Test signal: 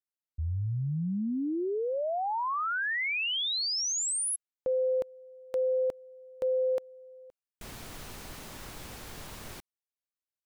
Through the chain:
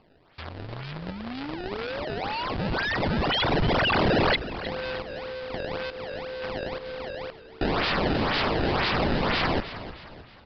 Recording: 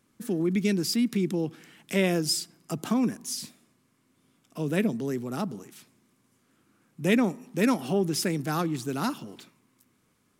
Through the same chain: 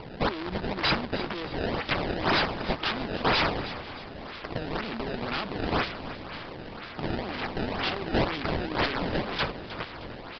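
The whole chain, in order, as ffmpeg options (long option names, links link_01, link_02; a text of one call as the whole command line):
ffmpeg -i in.wav -filter_complex "[0:a]highpass=150,alimiter=limit=-21dB:level=0:latency=1:release=67,acompressor=threshold=-40dB:ratio=16:attack=9.5:release=200:knee=6:detection=peak,acrusher=bits=5:mode=log:mix=0:aa=0.000001,asplit=2[link_01][link_02];[link_02]highpass=frequency=720:poles=1,volume=34dB,asoftclip=type=tanh:threshold=-23dB[link_03];[link_01][link_03]amix=inputs=2:normalize=0,lowpass=frequency=3800:poles=1,volume=-6dB,crystalizer=i=9:c=0,acrusher=samples=23:mix=1:aa=0.000001:lfo=1:lforange=36.8:lforate=2,asplit=2[link_04][link_05];[link_05]asplit=4[link_06][link_07][link_08][link_09];[link_06]adelay=311,afreqshift=-68,volume=-13dB[link_10];[link_07]adelay=622,afreqshift=-136,volume=-20.1dB[link_11];[link_08]adelay=933,afreqshift=-204,volume=-27.3dB[link_12];[link_09]adelay=1244,afreqshift=-272,volume=-34.4dB[link_13];[link_10][link_11][link_12][link_13]amix=inputs=4:normalize=0[link_14];[link_04][link_14]amix=inputs=2:normalize=0,aresample=11025,aresample=44100,volume=-6.5dB" out.wav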